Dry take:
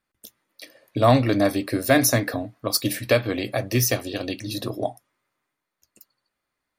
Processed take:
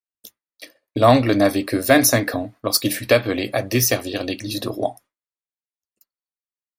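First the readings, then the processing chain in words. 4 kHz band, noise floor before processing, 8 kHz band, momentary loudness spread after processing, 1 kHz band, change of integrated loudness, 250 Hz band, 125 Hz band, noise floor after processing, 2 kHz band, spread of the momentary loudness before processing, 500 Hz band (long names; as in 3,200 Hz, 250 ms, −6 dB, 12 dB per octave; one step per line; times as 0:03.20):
+4.0 dB, −82 dBFS, +4.0 dB, 12 LU, +4.0 dB, +3.5 dB, +3.5 dB, 0.0 dB, below −85 dBFS, +4.0 dB, 12 LU, +4.0 dB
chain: downward expander −41 dBFS
parametric band 140 Hz −5.5 dB 0.69 octaves
level +4 dB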